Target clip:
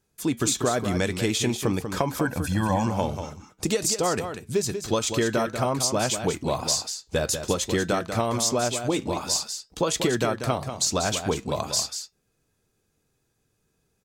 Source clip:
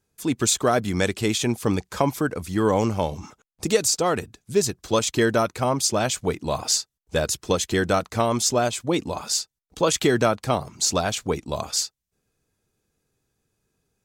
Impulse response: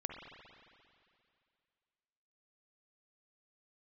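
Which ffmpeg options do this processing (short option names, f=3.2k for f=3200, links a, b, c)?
-filter_complex "[0:a]asettb=1/sr,asplit=3[a][b][c];[a]atrim=end=2.254[d];[b]atrim=start=2.25:end=2.87,asetpts=PTS-STARTPTS,afade=t=in:d=0.004:c=qsin,afade=t=out:st=0.616:d=0.004:c=qsin,aecho=1:1:1.2:0.88,atrim=end_sample=27342[e];[c]atrim=start=2.866[f];[d][e]acrossfade=d=0.004:c1=hsin:c2=qsin[g];[g][f]acrossfade=d=0.004:c1=qsin:c2=hsin,acompressor=threshold=-22dB:ratio=6,flanger=delay=5.3:depth=3.7:regen=-82:speed=0.5:shape=sinusoidal,aecho=1:1:191:0.376,volume=6dB"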